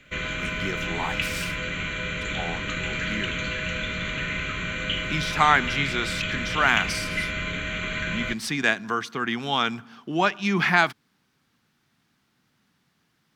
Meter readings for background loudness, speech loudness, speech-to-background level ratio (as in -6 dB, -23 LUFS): -28.0 LUFS, -25.5 LUFS, 2.5 dB